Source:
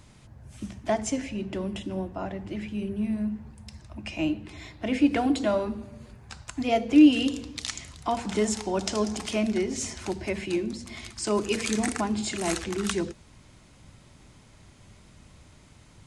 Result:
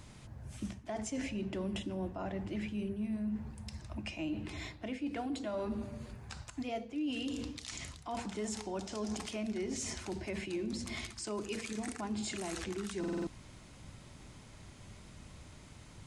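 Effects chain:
reversed playback
downward compressor 12 to 1, threshold −33 dBFS, peak gain reduction 21.5 dB
reversed playback
brickwall limiter −29.5 dBFS, peak gain reduction 10.5 dB
buffer that repeats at 0:12.99, samples 2,048, times 5

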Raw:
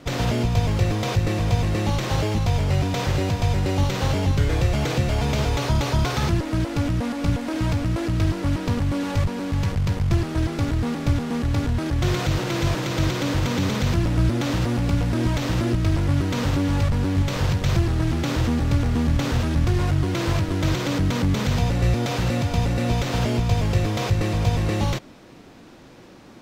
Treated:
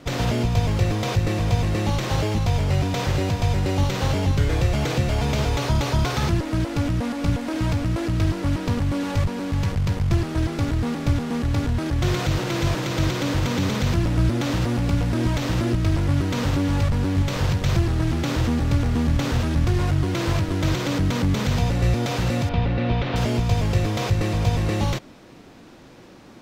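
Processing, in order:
0:22.49–0:23.16: low-pass filter 3,700 Hz 24 dB per octave

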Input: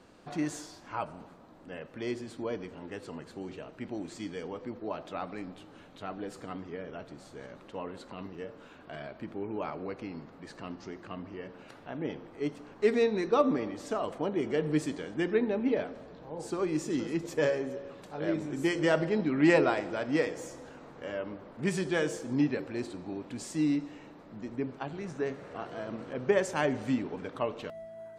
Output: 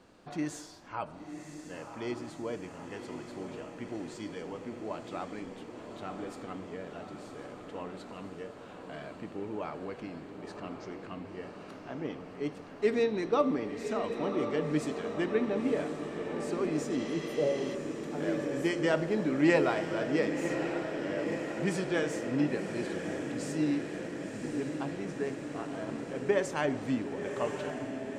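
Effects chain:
feedback delay with all-pass diffusion 1,049 ms, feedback 70%, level −7 dB
healed spectral selection 0:17.01–0:17.72, 860–8,600 Hz before
level −2 dB

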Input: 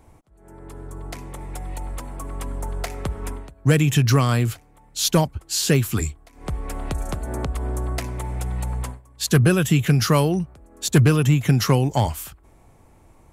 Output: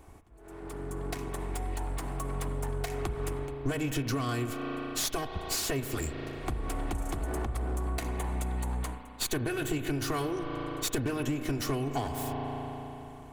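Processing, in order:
lower of the sound and its delayed copy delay 2.7 ms
0:07.85–0:10.05: notch filter 5,300 Hz, Q 8.2
spring reverb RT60 3.3 s, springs 36 ms, chirp 50 ms, DRR 9 dB
downward compressor 6 to 1, threshold −29 dBFS, peak gain reduction 14.5 dB

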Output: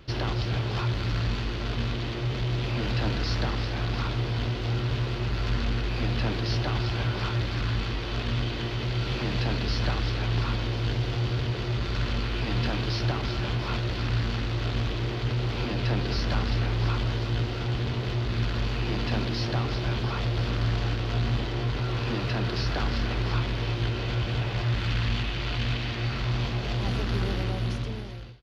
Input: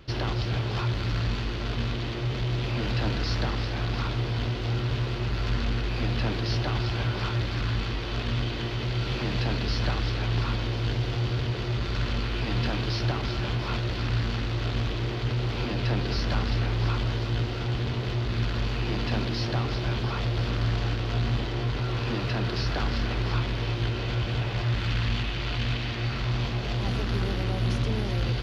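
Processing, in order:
fade-out on the ending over 1.05 s

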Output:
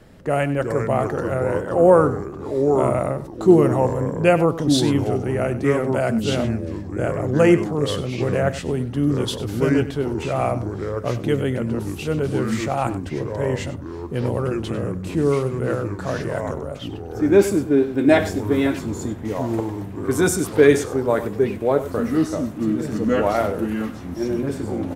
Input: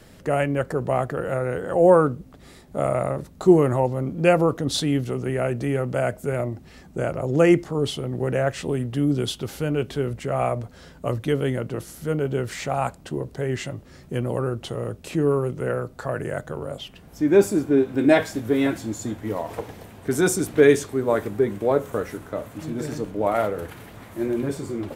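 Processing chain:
single-tap delay 98 ms −14 dB
delay with pitch and tempo change per echo 297 ms, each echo −4 semitones, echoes 2, each echo −6 dB
one half of a high-frequency compander decoder only
level +1.5 dB

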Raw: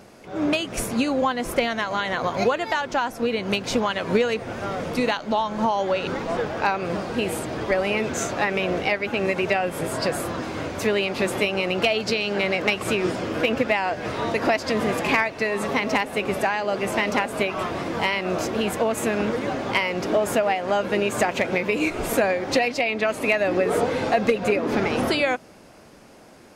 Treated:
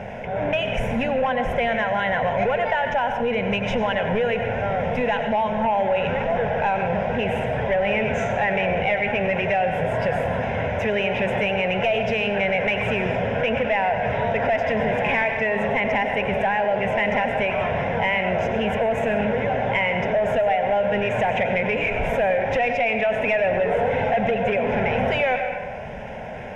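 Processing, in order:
hard clipping −18.5 dBFS, distortion −13 dB
high-frequency loss of the air 250 metres
phaser with its sweep stopped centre 1,200 Hz, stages 6
on a send at −8 dB: convolution reverb RT60 0.85 s, pre-delay 87 ms
on the sum: envelope flattener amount 50%
level +3 dB

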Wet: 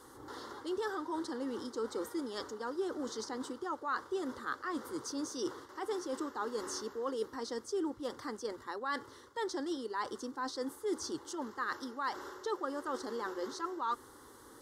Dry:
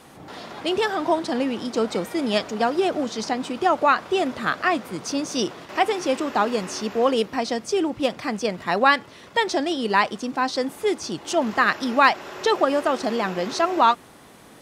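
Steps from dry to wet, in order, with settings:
reversed playback
downward compressor 6 to 1, threshold −27 dBFS, peak gain reduction 15.5 dB
reversed playback
phaser with its sweep stopped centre 670 Hz, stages 6
level −4.5 dB

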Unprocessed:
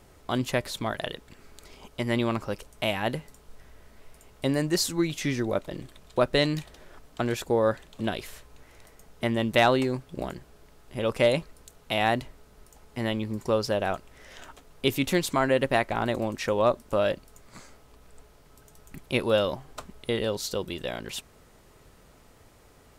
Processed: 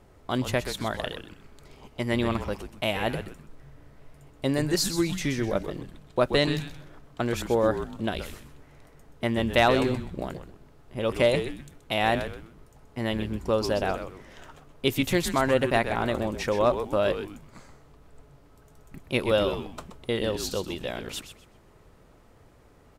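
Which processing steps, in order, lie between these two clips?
echo with shifted repeats 127 ms, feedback 33%, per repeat −150 Hz, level −9 dB
one half of a high-frequency compander decoder only

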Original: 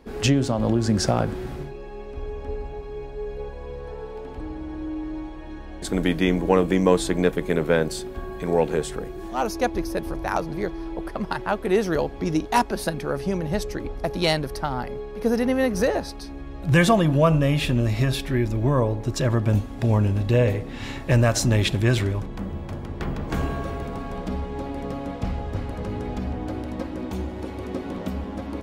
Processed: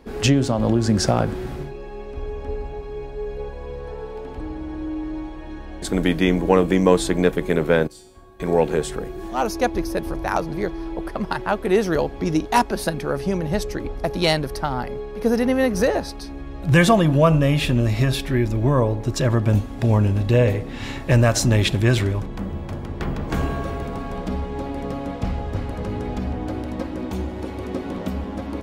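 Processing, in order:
0:07.87–0:08.40: tuned comb filter 100 Hz, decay 0.66 s, harmonics odd, mix 90%
level +2.5 dB

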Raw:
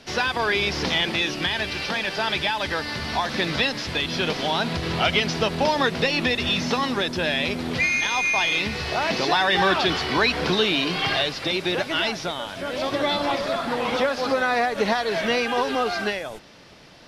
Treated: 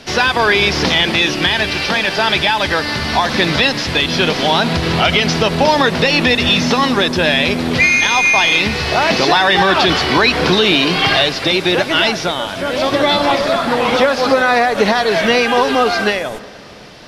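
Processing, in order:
on a send at −18 dB: convolution reverb RT60 2.7 s, pre-delay 76 ms
on the sum: boost into a limiter +11 dB
level −1 dB

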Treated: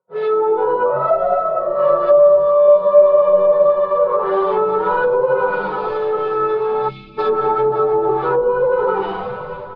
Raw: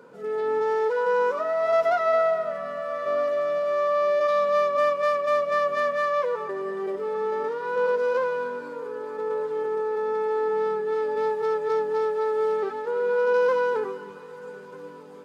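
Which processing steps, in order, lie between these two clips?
parametric band 2,300 Hz +10 dB 1.7 octaves
on a send: echo with shifted repeats 254 ms, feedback 56%, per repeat −100 Hz, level −13 dB
on the sum: comb and all-pass reverb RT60 1.1 s, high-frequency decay 0.5×, pre-delay 70 ms, DRR −1.5 dB
in parallel at +2.5 dB: downward compressor 12 to 1, threshold −22 dBFS, peak gain reduction 15.5 dB
on the sum: noise gate −33 dBFS, range −38 dB
gain on a spectral selection 0:10.76–0:11.23, 330–2,100 Hz −27 dB
flanger 0.14 Hz, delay 0.9 ms, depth 4.3 ms, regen +90%
low-pass that shuts in the quiet parts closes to 890 Hz, open at −16 dBFS
graphic EQ with 10 bands 125 Hz +11 dB, 250 Hz −12 dB, 500 Hz +7 dB, 1,000 Hz +7 dB, 2,000 Hz −7 dB, 4,000 Hz +12 dB
time stretch by phase vocoder 0.64×
treble cut that deepens with the level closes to 720 Hz, closed at −12.5 dBFS
comb filter 5.4 ms, depth 68%
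level +2.5 dB

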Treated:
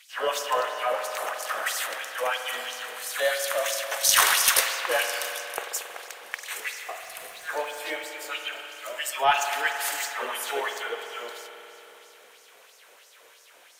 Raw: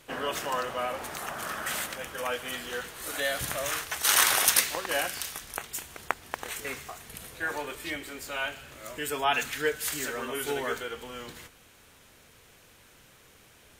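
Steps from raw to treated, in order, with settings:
auto-filter high-pass sine 3 Hz 480–5,700 Hz
spring reverb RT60 3.5 s, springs 45 ms, chirp 60 ms, DRR 4.5 dB
in parallel at −11.5 dB: asymmetric clip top −22 dBFS
0:07.01–0:08.05: on the sum: surface crackle 490 per second −40 dBFS
level −1 dB

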